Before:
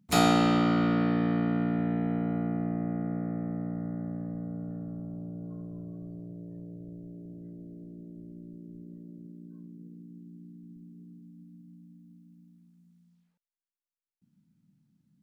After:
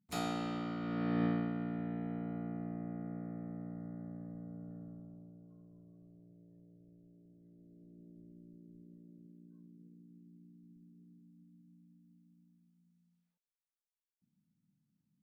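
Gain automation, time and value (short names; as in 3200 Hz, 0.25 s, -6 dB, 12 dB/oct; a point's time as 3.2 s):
0.8 s -15 dB
1.24 s -4 dB
1.53 s -10.5 dB
4.85 s -10.5 dB
5.48 s -18 dB
7.42 s -18 dB
8.06 s -11 dB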